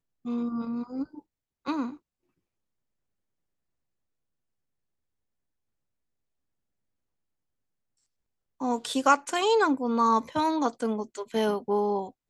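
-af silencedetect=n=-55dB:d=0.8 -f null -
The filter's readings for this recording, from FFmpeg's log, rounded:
silence_start: 1.97
silence_end: 8.60 | silence_duration: 6.63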